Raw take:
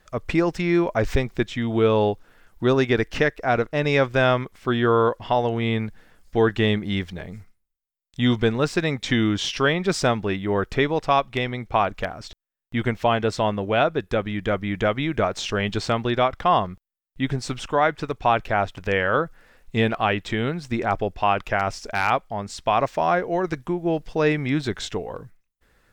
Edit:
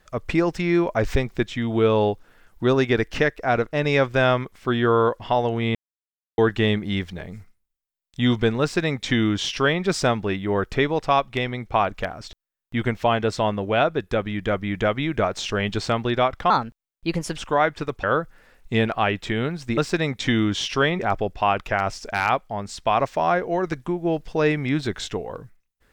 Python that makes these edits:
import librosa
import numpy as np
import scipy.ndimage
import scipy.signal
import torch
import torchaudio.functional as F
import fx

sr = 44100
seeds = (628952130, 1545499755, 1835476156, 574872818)

y = fx.edit(x, sr, fx.silence(start_s=5.75, length_s=0.63),
    fx.duplicate(start_s=8.61, length_s=1.22, to_s=20.8),
    fx.speed_span(start_s=16.5, length_s=1.08, speed=1.25),
    fx.cut(start_s=18.25, length_s=0.81), tone=tone)